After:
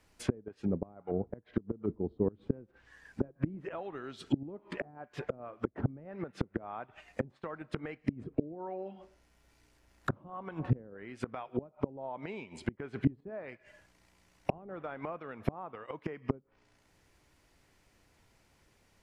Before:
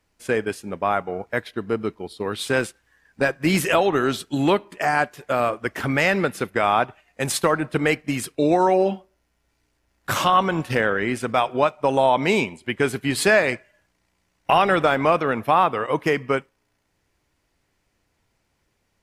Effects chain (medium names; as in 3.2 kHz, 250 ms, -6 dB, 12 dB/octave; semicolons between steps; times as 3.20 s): inverted gate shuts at -14 dBFS, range -25 dB; low-pass that closes with the level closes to 330 Hz, closed at -33 dBFS; trim +3 dB